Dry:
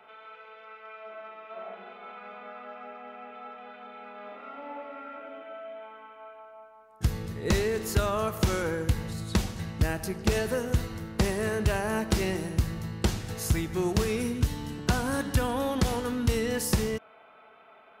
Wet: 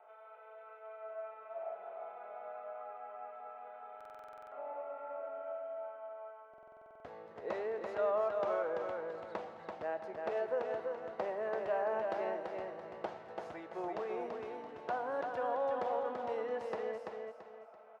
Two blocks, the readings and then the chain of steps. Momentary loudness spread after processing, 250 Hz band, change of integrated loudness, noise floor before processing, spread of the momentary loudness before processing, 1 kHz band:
17 LU, −19.5 dB, −10.5 dB, −55 dBFS, 17 LU, −3.5 dB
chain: four-pole ladder band-pass 730 Hz, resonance 50%
repeating echo 336 ms, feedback 34%, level −4 dB
buffer that repeats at 0:03.96/0:06.49, samples 2,048, times 11
level +4.5 dB

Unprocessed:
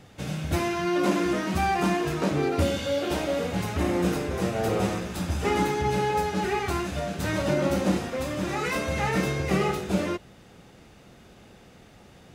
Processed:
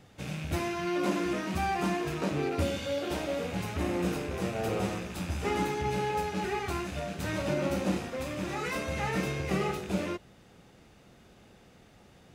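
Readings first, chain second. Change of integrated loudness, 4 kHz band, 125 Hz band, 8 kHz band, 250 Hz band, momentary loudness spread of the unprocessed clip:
−5.5 dB, −5.0 dB, −5.5 dB, −5.5 dB, −5.5 dB, 5 LU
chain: loose part that buzzes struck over −34 dBFS, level −29 dBFS
level −5.5 dB

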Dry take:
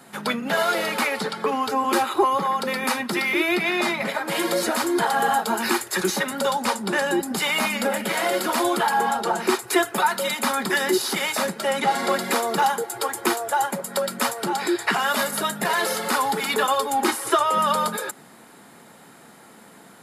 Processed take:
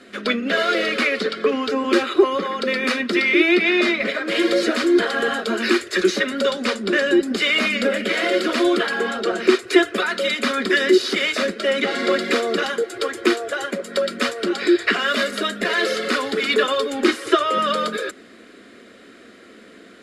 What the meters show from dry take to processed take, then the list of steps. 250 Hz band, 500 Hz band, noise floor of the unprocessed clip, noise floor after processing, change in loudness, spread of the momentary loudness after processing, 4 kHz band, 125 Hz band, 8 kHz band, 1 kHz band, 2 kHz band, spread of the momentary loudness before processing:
+6.0 dB, +5.5 dB, −48 dBFS, −46 dBFS, +3.0 dB, 6 LU, +4.5 dB, can't be measured, −6.5 dB, −4.5 dB, +4.5 dB, 4 LU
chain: low-pass filter 3,900 Hz 12 dB per octave
phaser with its sweep stopped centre 360 Hz, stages 4
level +7.5 dB

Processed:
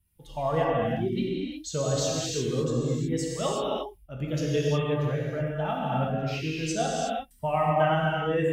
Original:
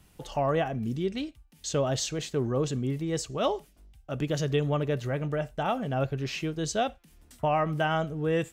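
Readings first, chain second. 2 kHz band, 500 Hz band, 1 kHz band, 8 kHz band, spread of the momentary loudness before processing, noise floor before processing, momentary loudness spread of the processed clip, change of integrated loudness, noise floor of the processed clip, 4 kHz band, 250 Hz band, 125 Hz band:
+1.5 dB, +2.0 dB, +2.5 dB, +2.5 dB, 5 LU, −60 dBFS, 7 LU, +2.0 dB, −56 dBFS, +1.5 dB, +1.5 dB, +2.0 dB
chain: spectral dynamics exaggerated over time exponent 1.5
reverb whose tail is shaped and stops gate 390 ms flat, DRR −5 dB
level −1.5 dB

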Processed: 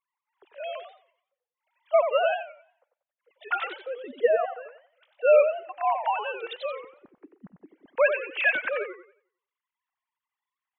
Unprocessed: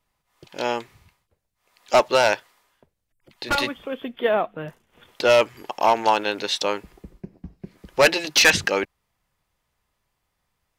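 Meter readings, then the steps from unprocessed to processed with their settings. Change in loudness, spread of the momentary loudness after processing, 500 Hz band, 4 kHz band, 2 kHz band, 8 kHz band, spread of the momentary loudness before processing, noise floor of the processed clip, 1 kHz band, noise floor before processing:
−4.5 dB, 17 LU, −2.5 dB, −17.5 dB, −6.0 dB, below −40 dB, 16 LU, below −85 dBFS, −6.0 dB, −77 dBFS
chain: three sine waves on the formant tracks
feedback echo with a swinging delay time 90 ms, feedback 32%, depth 183 cents, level −8 dB
level −5 dB

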